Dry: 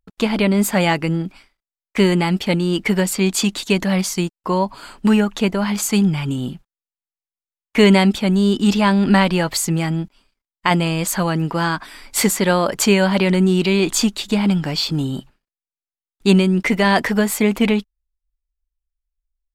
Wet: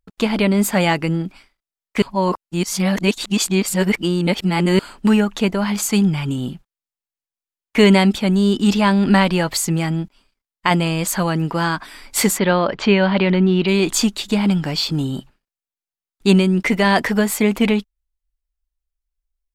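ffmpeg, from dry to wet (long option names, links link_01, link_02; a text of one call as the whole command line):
ffmpeg -i in.wav -filter_complex "[0:a]asplit=3[link_01][link_02][link_03];[link_01]afade=type=out:start_time=12.37:duration=0.02[link_04];[link_02]lowpass=frequency=4000:width=0.5412,lowpass=frequency=4000:width=1.3066,afade=type=in:start_time=12.37:duration=0.02,afade=type=out:start_time=13.67:duration=0.02[link_05];[link_03]afade=type=in:start_time=13.67:duration=0.02[link_06];[link_04][link_05][link_06]amix=inputs=3:normalize=0,asplit=3[link_07][link_08][link_09];[link_07]atrim=end=2.022[link_10];[link_08]atrim=start=2.018:end=4.792,asetpts=PTS-STARTPTS,areverse[link_11];[link_09]atrim=start=4.788[link_12];[link_10][link_11]acrossfade=duration=0.004:curve1=hsin:curve2=hsin[link_13];[link_13][link_12]acrossfade=duration=0.004:curve1=hsin:curve2=hsin" out.wav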